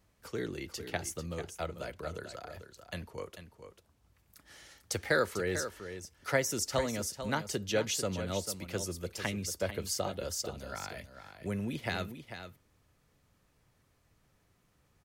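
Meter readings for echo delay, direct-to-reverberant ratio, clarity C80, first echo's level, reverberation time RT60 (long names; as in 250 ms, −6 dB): 444 ms, no reverb audible, no reverb audible, −10.0 dB, no reverb audible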